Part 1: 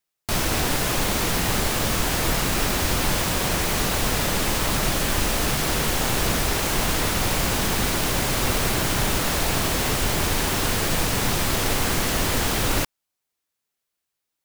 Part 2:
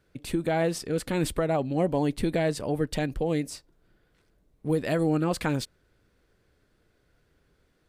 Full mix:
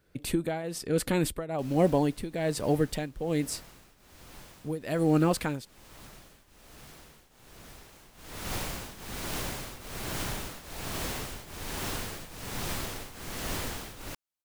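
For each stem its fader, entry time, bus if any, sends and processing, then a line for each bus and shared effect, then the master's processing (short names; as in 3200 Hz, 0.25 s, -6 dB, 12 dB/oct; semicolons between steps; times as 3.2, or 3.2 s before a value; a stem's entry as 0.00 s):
-10.0 dB, 1.30 s, no send, auto duck -16 dB, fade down 2.00 s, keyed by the second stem
+3.0 dB, 0.00 s, no send, high shelf 12000 Hz +10.5 dB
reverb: off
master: tremolo triangle 1.2 Hz, depth 85%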